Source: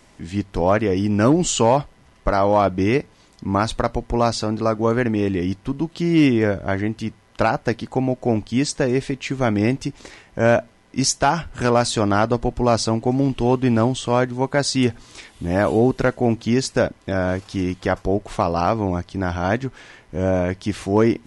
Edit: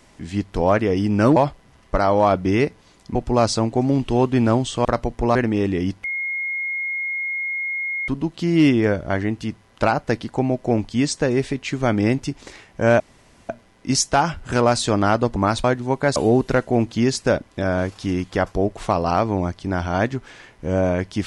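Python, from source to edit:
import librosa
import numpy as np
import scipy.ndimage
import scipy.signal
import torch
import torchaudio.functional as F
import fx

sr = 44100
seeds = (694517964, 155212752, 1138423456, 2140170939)

y = fx.edit(x, sr, fx.cut(start_s=1.36, length_s=0.33),
    fx.swap(start_s=3.48, length_s=0.28, other_s=12.45, other_length_s=1.7),
    fx.cut(start_s=4.26, length_s=0.71),
    fx.insert_tone(at_s=5.66, length_s=2.04, hz=2150.0, db=-22.5),
    fx.insert_room_tone(at_s=10.58, length_s=0.49),
    fx.cut(start_s=14.67, length_s=0.99), tone=tone)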